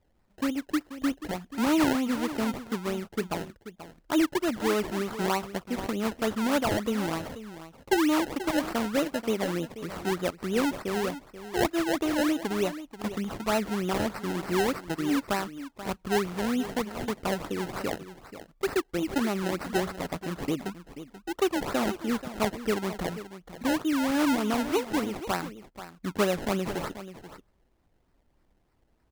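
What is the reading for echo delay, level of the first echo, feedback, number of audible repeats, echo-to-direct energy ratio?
0.484 s, -13.0 dB, no steady repeat, 1, -13.0 dB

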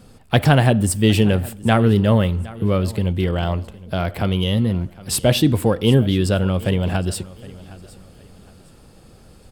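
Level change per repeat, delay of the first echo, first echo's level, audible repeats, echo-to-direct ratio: -10.0 dB, 0.763 s, -20.0 dB, 2, -19.5 dB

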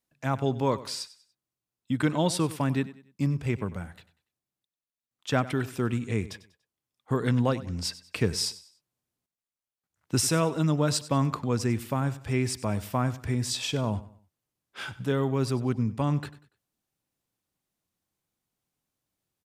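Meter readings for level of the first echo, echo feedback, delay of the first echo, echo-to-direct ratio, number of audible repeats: -17.0 dB, 35%, 96 ms, -16.5 dB, 2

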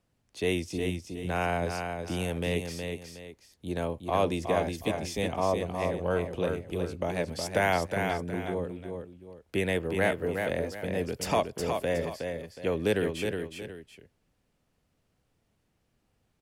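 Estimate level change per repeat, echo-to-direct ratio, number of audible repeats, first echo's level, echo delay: -9.5 dB, -5.0 dB, 2, -5.5 dB, 0.366 s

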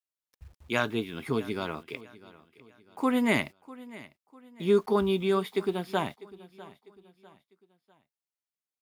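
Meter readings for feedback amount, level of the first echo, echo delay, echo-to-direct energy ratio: 40%, -19.5 dB, 0.649 s, -19.0 dB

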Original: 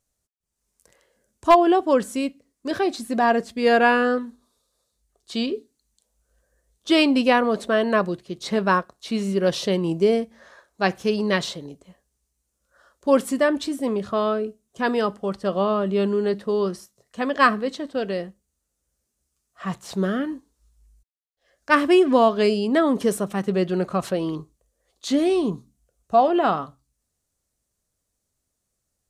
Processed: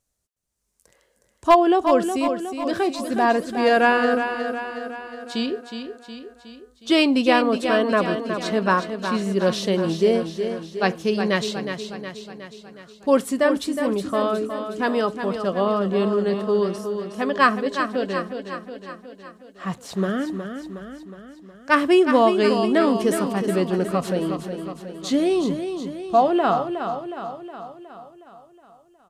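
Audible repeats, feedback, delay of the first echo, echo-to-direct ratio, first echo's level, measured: 6, 57%, 0.365 s, -6.5 dB, -8.0 dB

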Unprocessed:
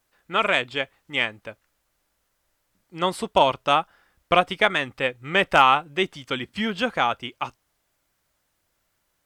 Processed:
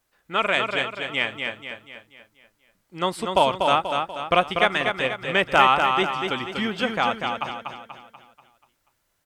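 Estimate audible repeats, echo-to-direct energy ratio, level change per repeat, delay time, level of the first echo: 5, -4.0 dB, -6.5 dB, 0.242 s, -5.0 dB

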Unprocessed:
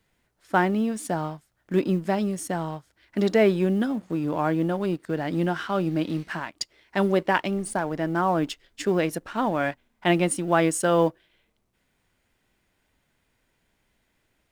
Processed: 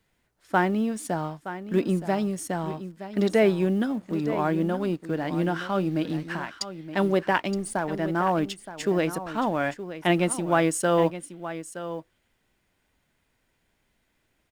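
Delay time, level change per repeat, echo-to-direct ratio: 0.92 s, no steady repeat, -12.5 dB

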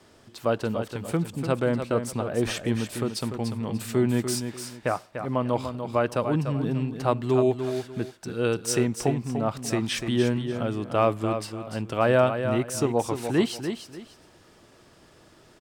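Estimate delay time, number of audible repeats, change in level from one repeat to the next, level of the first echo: 0.294 s, 2, -11.5 dB, -8.0 dB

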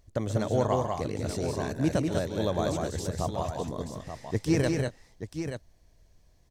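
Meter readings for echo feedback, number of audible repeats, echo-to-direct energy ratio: no steady repeat, 3, -2.0 dB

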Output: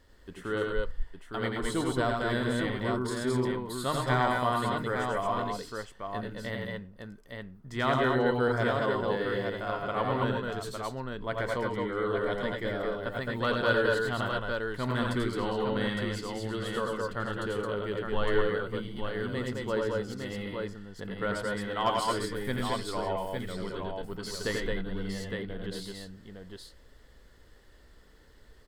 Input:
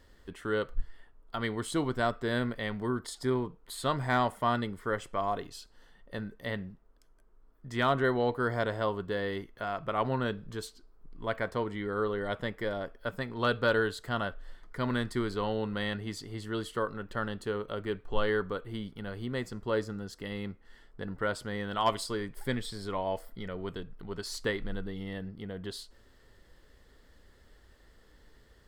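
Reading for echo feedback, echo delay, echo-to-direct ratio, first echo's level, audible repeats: no steady repeat, 87 ms, 1.5 dB, -5.0 dB, 3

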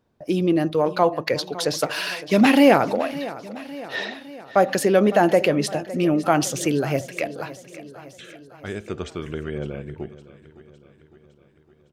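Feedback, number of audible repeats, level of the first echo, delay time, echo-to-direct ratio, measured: 58%, 4, -16.5 dB, 0.559 s, -14.5 dB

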